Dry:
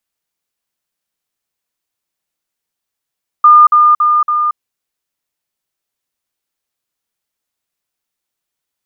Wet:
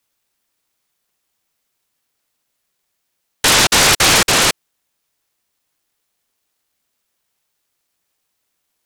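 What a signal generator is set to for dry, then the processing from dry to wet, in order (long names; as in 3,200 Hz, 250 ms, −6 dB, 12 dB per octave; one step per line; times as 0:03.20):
level staircase 1,210 Hz −1.5 dBFS, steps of −3 dB, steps 4, 0.23 s 0.05 s
spectral tilt +3 dB per octave
brickwall limiter −8 dBFS
short delay modulated by noise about 1,300 Hz, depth 0.39 ms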